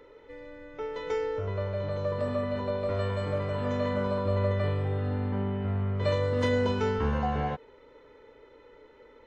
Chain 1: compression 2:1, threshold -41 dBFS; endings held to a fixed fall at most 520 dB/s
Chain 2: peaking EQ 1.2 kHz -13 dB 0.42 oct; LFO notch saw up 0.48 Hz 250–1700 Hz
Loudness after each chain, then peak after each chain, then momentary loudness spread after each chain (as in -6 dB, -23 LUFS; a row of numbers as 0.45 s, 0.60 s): -38.5 LUFS, -31.5 LUFS; -24.5 dBFS, -16.5 dBFS; 18 LU, 11 LU